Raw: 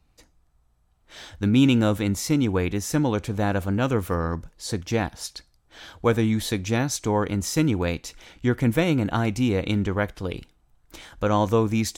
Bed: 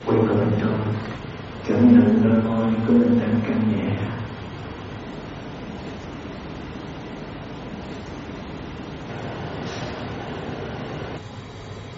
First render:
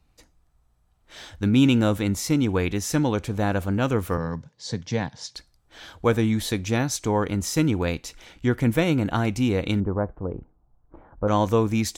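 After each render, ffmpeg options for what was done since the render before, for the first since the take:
-filter_complex "[0:a]asettb=1/sr,asplit=3[s0][s1][s2];[s0]atrim=end=2.494[s3];[s1]atrim=start=2.49:end=3.09,asetpts=PTS-STARTPTS,afade=t=in:d=0.004:c=qsin,afade=t=out:st=0.596:d=0.004:c=qsin,equalizer=f=3800:w=0.66:g=3[s4];[s2]atrim=start=3.086[s5];[s3][s4]acrossfade=d=0.004:c1=hsin:c2=qsin[s6];[s6][s5]acrossfade=d=0.004:c1=qsin:c2=hsin,asettb=1/sr,asplit=3[s7][s8][s9];[s7]atrim=end=4.174[s10];[s8]atrim=start=4.17:end=5.35,asetpts=PTS-STARTPTS,afade=t=in:d=0.004:c=qsin,afade=t=out:st=1.176:d=0.004:c=qsin,highpass=f=100:w=0.5412,highpass=f=100:w=1.3066,equalizer=f=140:t=q:w=4:g=5,equalizer=f=340:t=q:w=4:g=-10,equalizer=f=700:t=q:w=4:g=-5,equalizer=f=1300:t=q:w=4:g=-9,equalizer=f=2600:t=q:w=4:g=-6,lowpass=f=6500:w=0.5412,lowpass=f=6500:w=1.3066[s11];[s9]atrim=start=5.346[s12];[s10][s11]acrossfade=d=0.004:c1=hsin:c2=qsin[s13];[s13][s12]acrossfade=d=0.004:c1=qsin:c2=hsin,asettb=1/sr,asplit=3[s14][s15][s16];[s14]atrim=end=9.804[s17];[s15]atrim=start=9.8:end=11.28,asetpts=PTS-STARTPTS,afade=t=in:d=0.004:c=qsin,afade=t=out:st=1.476:d=0.004:c=qsin,lowpass=f=1100:w=0.5412,lowpass=f=1100:w=1.3066[s18];[s16]atrim=start=11.276[s19];[s17][s18]acrossfade=d=0.004:c1=hsin:c2=qsin[s20];[s20][s19]acrossfade=d=0.004:c1=qsin:c2=hsin"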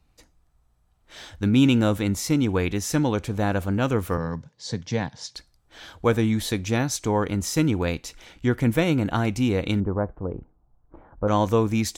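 -af anull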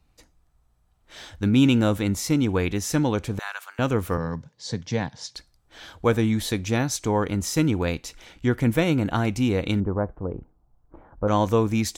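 -filter_complex "[0:a]asettb=1/sr,asplit=3[s0][s1][s2];[s0]atrim=end=3.394[s3];[s1]atrim=start=3.39:end=3.79,asetpts=PTS-STARTPTS,afade=t=in:d=0.004:c=qsin,afade=t=out:st=0.396:d=0.004:c=qsin,highpass=f=1100:w=0.5412,highpass=f=1100:w=1.3066[s4];[s2]atrim=start=3.786[s5];[s3][s4]acrossfade=d=0.004:c1=hsin:c2=qsin[s6];[s6][s5]acrossfade=d=0.004:c1=qsin:c2=hsin"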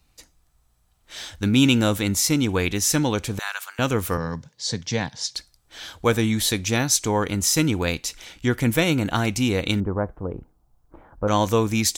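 -af "highshelf=f=2300:g=10.5"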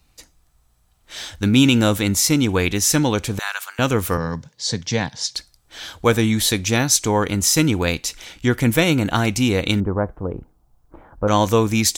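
-af "volume=1.5,alimiter=limit=0.708:level=0:latency=1"

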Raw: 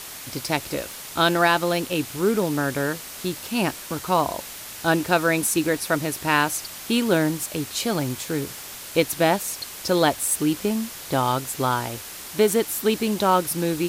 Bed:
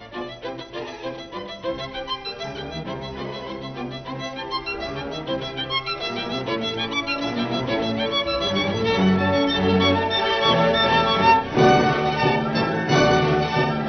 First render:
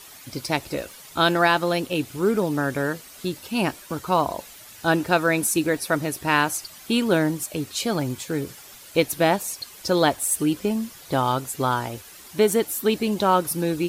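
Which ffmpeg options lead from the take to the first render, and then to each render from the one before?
-af "afftdn=nr=10:nf=-38"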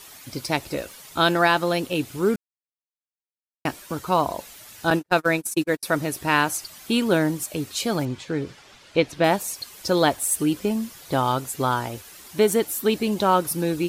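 -filter_complex "[0:a]asettb=1/sr,asplit=3[s0][s1][s2];[s0]atrim=end=4.904[s3];[s1]atrim=start=4.9:end=5.83,asetpts=PTS-STARTPTS,afade=t=in:d=0.004:c=qsin,afade=t=out:st=0.926:d=0.004:c=qsin,agate=range=0.00501:threshold=0.0708:ratio=16:release=100:detection=peak[s4];[s2]atrim=start=5.826[s5];[s3][s4]acrossfade=d=0.004:c1=hsin:c2=qsin[s6];[s6][s5]acrossfade=d=0.004:c1=qsin:c2=hsin,asettb=1/sr,asplit=3[s7][s8][s9];[s7]atrim=end=8.054[s10];[s8]atrim=start=8.05:end=9.24,asetpts=PTS-STARTPTS,afade=t=in:d=0.004:c=qsin,afade=t=out:st=1.186:d=0.004:c=qsin,lowpass=4300[s11];[s9]atrim=start=9.236[s12];[s10][s11]acrossfade=d=0.004:c1=hsin:c2=qsin[s13];[s13][s12]acrossfade=d=0.004:c1=qsin:c2=hsin,asplit=3[s14][s15][s16];[s14]atrim=end=2.36,asetpts=PTS-STARTPTS,afade=t=out:st=2.356:d=0.004:c=hsin[s17];[s15]atrim=start=2.36:end=3.65,asetpts=PTS-STARTPTS,volume=0[s18];[s16]atrim=start=3.65,asetpts=PTS-STARTPTS,afade=t=in:d=0.004:c=hsin[s19];[s17][s18][s19]concat=n=3:v=0:a=1"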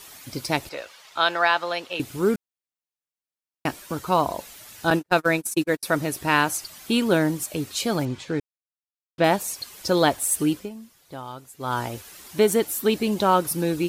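-filter_complex "[0:a]asettb=1/sr,asplit=3[s0][s1][s2];[s0]atrim=end=0.694[s3];[s1]atrim=start=0.69:end=2,asetpts=PTS-STARTPTS,afade=t=in:d=0.004:c=qsin,afade=t=out:st=1.306:d=0.004:c=qsin,acrossover=split=530 5800:gain=0.112 1 0.158[s4][s5][s6];[s4][s5][s6]amix=inputs=3:normalize=0[s7];[s2]atrim=start=1.996[s8];[s3][s7]acrossfade=d=0.004:c1=hsin:c2=qsin[s9];[s9][s8]acrossfade=d=0.004:c1=qsin:c2=hsin,asplit=5[s10][s11][s12][s13][s14];[s10]atrim=end=8.4,asetpts=PTS-STARTPTS,afade=t=out:st=8.396:d=0.004:c=hsin[s15];[s11]atrim=start=8.4:end=9.18,asetpts=PTS-STARTPTS,volume=0[s16];[s12]atrim=start=9.18:end=10.7,asetpts=PTS-STARTPTS,afade=t=in:d=0.004:c=hsin,afade=t=out:st=1.31:d=0.21:silence=0.188365[s17];[s13]atrim=start=10.7:end=11.59,asetpts=PTS-STARTPTS,volume=0.188[s18];[s14]atrim=start=11.59,asetpts=PTS-STARTPTS,afade=t=in:d=0.21:silence=0.188365[s19];[s15][s16][s17][s18][s19]concat=n=5:v=0:a=1"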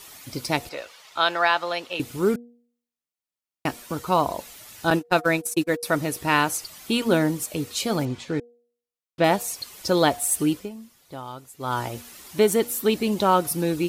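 -af "bandreject=f=1600:w=19,bandreject=f=238.6:t=h:w=4,bandreject=f=477.2:t=h:w=4,bandreject=f=715.8:t=h:w=4"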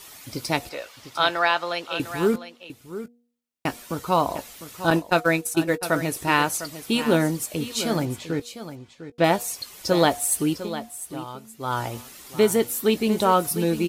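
-filter_complex "[0:a]asplit=2[s0][s1];[s1]adelay=18,volume=0.211[s2];[s0][s2]amix=inputs=2:normalize=0,aecho=1:1:702:0.237"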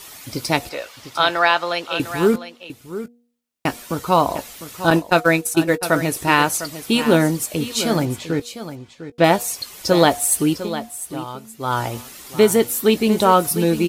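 -af "volume=1.78,alimiter=limit=0.794:level=0:latency=1"

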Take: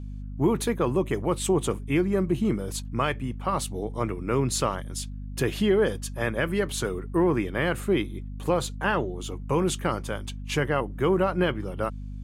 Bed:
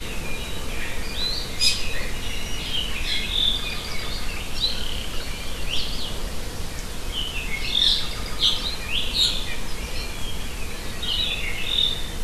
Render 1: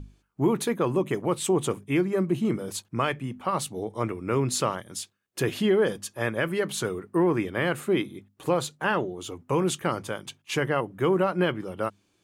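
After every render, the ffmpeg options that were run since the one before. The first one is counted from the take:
-af "bandreject=f=50:t=h:w=6,bandreject=f=100:t=h:w=6,bandreject=f=150:t=h:w=6,bandreject=f=200:t=h:w=6,bandreject=f=250:t=h:w=6"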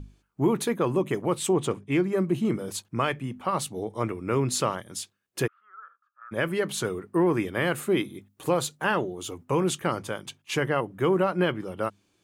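-filter_complex "[0:a]asettb=1/sr,asplit=3[s0][s1][s2];[s0]atrim=end=1.534[s3];[s1]atrim=start=1.53:end=2.04,asetpts=PTS-STARTPTS,afade=t=in:d=0.004:c=qsin,afade=t=out:st=0.506:d=0.004:c=qsin,adynamicsmooth=sensitivity=7.5:basefreq=6300[s4];[s2]atrim=start=2.036[s5];[s3][s4]acrossfade=d=0.004:c1=hsin:c2=qsin[s6];[s6][s5]acrossfade=d=0.004:c1=qsin:c2=hsin,asplit=3[s7][s8][s9];[s7]afade=t=out:st=5.46:d=0.02[s10];[s8]asuperpass=centerf=1300:order=4:qfactor=7.4,afade=t=in:st=5.46:d=0.02,afade=t=out:st=6.31:d=0.02[s11];[s9]afade=t=in:st=6.31:d=0.02[s12];[s10][s11][s12]amix=inputs=3:normalize=0,asettb=1/sr,asplit=3[s13][s14][s15];[s13]atrim=end=7.264[s16];[s14]atrim=start=7.26:end=9.45,asetpts=PTS-STARTPTS,afade=t=in:d=0.004:c=qsin,afade=t=out:st=2.186:d=0.004:c=qsin,highshelf=f=7000:g=6.5[s17];[s15]atrim=start=9.446[s18];[s16][s17]acrossfade=d=0.004:c1=hsin:c2=qsin[s19];[s19][s18]acrossfade=d=0.004:c1=qsin:c2=hsin"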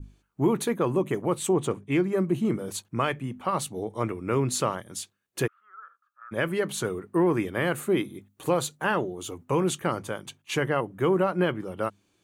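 -af "bandreject=f=5100:w=14,adynamicequalizer=threshold=0.00501:dfrequency=3400:dqfactor=0.8:tfrequency=3400:tqfactor=0.8:attack=5:release=100:ratio=0.375:range=2:mode=cutabove:tftype=bell"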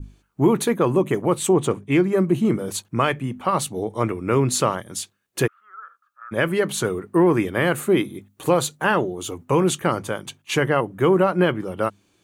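-af "volume=2"

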